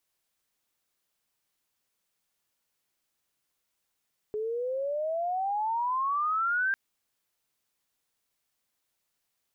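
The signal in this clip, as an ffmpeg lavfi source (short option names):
-f lavfi -i "aevalsrc='pow(10,(-29+5*t/2.4)/20)*sin(2*PI*420*2.4/log(1600/420)*(exp(log(1600/420)*t/2.4)-1))':d=2.4:s=44100"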